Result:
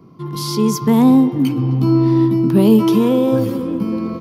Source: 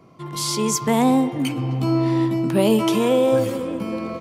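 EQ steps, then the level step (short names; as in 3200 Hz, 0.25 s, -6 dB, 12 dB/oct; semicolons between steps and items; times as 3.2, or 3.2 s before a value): EQ curve 100 Hz 0 dB, 190 Hz +4 dB, 420 Hz 0 dB, 620 Hz -11 dB, 1000 Hz -3 dB, 2200 Hz -10 dB, 5200 Hz -4 dB, 7800 Hz -15 dB, 12000 Hz -2 dB; +5.0 dB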